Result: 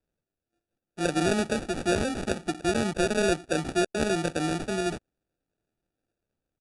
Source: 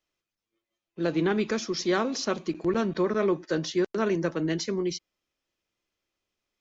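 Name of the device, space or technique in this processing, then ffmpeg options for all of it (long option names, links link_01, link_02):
crushed at another speed: -af "asetrate=88200,aresample=44100,acrusher=samples=21:mix=1:aa=0.000001,asetrate=22050,aresample=44100"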